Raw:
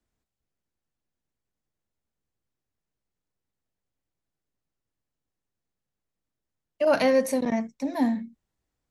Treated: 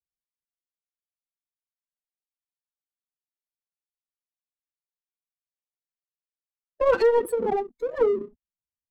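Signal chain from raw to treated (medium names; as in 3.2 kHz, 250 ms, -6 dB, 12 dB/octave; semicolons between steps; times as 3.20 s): spectral gate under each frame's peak -20 dB strong; in parallel at -1 dB: compression 6:1, threshold -29 dBFS, peak gain reduction 12 dB; on the sum: formant-preserving pitch shift +10 st; hard clipper -13 dBFS, distortion -35 dB; power-law waveshaper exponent 1.4; gate -49 dBFS, range -11 dB; bass shelf 450 Hz +11 dB; trim -2.5 dB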